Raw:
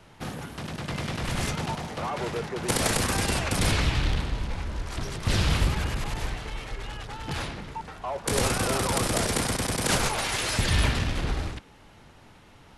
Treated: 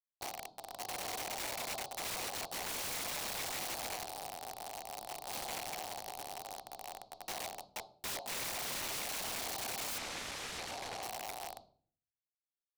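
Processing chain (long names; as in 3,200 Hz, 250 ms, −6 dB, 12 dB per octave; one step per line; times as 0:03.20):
high-shelf EQ 3,300 Hz −3 dB
tape wow and flutter 60 cents
comparator with hysteresis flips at −29.5 dBFS
pair of resonant band-passes 1,800 Hz, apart 2.5 octaves
convolution reverb RT60 0.50 s, pre-delay 7 ms, DRR 9.5 dB
wrap-around overflow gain 40.5 dB
0:09.98–0:11.03: high-frequency loss of the air 61 metres
level +6 dB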